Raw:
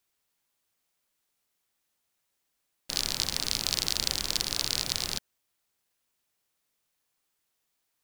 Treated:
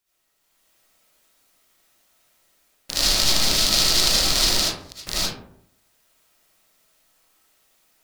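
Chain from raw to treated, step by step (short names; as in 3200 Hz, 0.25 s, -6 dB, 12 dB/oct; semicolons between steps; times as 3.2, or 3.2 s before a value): AGC gain up to 9 dB; 4.57–5.07 flipped gate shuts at -8 dBFS, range -32 dB; digital reverb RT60 0.71 s, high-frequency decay 0.4×, pre-delay 35 ms, DRR -9 dB; gain -1 dB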